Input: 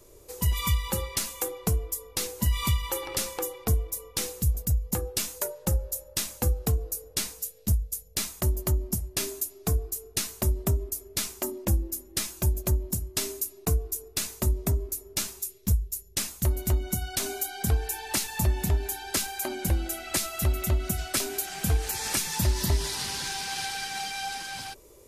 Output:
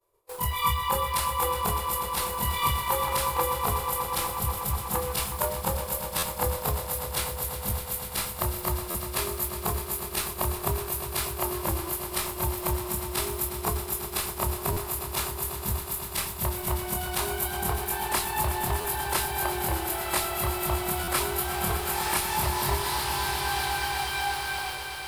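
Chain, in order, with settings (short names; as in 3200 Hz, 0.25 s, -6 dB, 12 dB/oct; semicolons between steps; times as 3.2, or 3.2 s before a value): short-time reversal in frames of 60 ms; low shelf 170 Hz -10 dB; expander -46 dBFS; in parallel at -2 dB: bit-crush 7-bit; on the sum: fifteen-band EQ 250 Hz -9 dB, 1000 Hz +11 dB, 6300 Hz -11 dB; reverse; upward compressor, threshold -34 dBFS; reverse; swelling echo 0.122 s, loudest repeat 5, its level -12.5 dB; stuck buffer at 6.18/8.9/14.72/18.8/21.03, samples 512, times 3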